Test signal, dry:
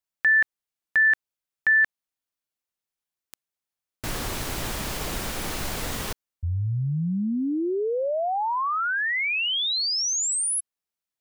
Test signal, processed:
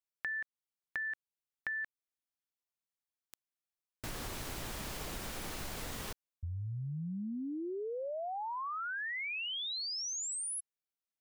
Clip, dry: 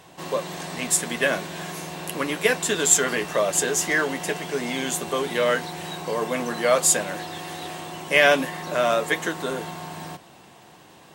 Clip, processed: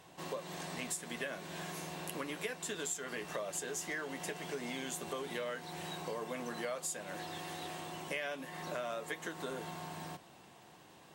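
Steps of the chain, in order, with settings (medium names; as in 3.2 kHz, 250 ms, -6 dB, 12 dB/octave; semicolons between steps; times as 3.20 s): compression 6:1, threshold -28 dBFS; trim -9 dB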